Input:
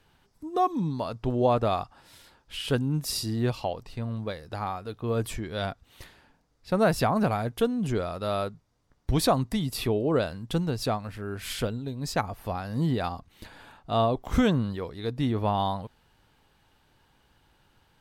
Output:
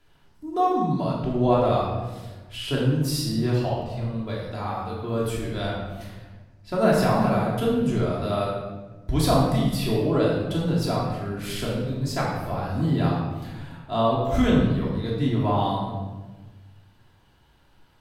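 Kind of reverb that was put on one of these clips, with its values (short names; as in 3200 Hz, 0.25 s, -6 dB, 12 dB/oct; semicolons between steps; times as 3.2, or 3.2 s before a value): shoebox room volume 810 m³, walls mixed, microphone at 3 m; gain -4 dB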